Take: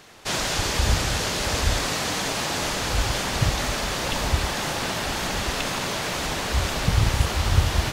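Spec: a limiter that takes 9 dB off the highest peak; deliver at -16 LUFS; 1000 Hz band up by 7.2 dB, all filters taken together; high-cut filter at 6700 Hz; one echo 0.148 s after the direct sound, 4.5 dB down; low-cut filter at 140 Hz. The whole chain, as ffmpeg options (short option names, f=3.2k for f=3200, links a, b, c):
-af "highpass=140,lowpass=6.7k,equalizer=f=1k:t=o:g=9,alimiter=limit=-19.5dB:level=0:latency=1,aecho=1:1:148:0.596,volume=10.5dB"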